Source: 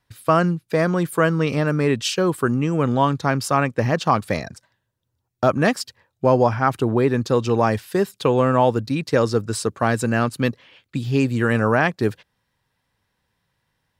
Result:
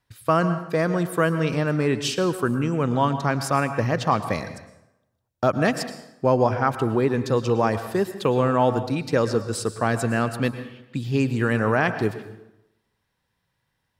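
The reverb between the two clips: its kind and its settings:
dense smooth reverb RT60 0.88 s, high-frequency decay 0.7×, pre-delay 95 ms, DRR 10.5 dB
level −3 dB

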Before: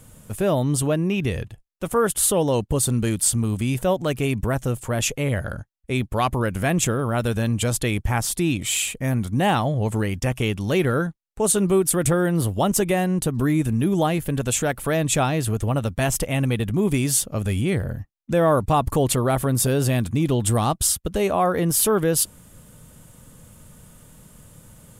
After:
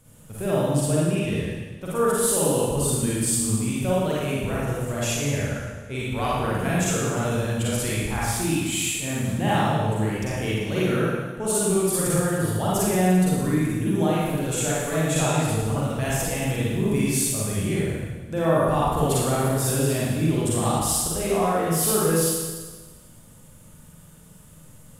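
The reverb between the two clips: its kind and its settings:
four-comb reverb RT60 1.4 s, DRR −7.5 dB
level −9.5 dB

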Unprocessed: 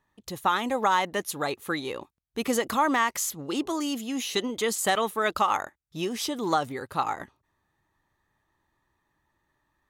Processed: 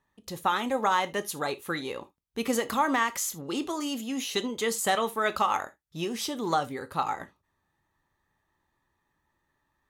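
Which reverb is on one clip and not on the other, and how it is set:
reverb whose tail is shaped and stops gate 100 ms falling, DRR 10 dB
level −2 dB

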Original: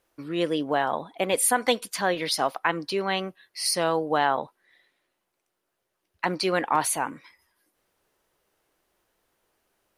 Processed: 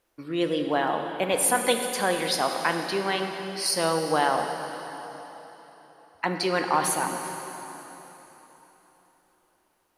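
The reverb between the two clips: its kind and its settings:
dense smooth reverb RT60 3.8 s, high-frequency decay 0.95×, DRR 4 dB
level −1 dB

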